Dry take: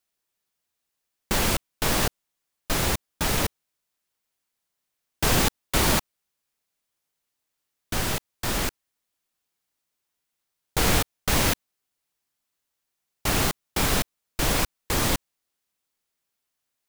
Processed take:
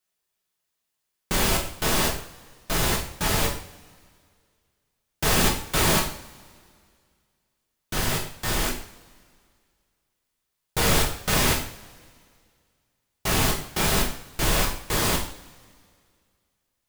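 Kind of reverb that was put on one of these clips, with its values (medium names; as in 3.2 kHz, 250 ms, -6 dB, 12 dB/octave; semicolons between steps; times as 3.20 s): two-slope reverb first 0.49 s, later 2.2 s, from -22 dB, DRR -1.5 dB; trim -2.5 dB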